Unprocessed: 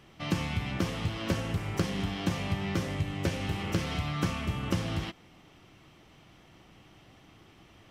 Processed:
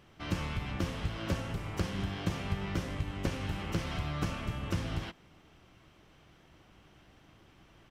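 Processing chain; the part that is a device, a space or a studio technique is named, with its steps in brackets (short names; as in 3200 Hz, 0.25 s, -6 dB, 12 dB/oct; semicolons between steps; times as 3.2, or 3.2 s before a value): octave pedal (harmoniser -12 st -3 dB); gain -5 dB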